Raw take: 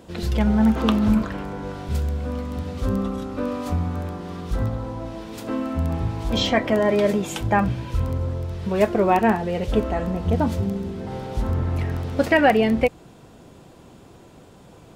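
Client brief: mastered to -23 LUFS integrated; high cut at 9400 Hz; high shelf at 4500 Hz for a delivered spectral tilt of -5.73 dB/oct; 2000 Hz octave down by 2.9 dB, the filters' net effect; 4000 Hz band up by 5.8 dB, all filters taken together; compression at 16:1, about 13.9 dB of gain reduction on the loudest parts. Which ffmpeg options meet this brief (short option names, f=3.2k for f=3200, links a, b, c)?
-af "lowpass=9.4k,equalizer=f=2k:t=o:g=-6,equalizer=f=4k:t=o:g=8.5,highshelf=f=4.5k:g=3.5,acompressor=threshold=-27dB:ratio=16,volume=9dB"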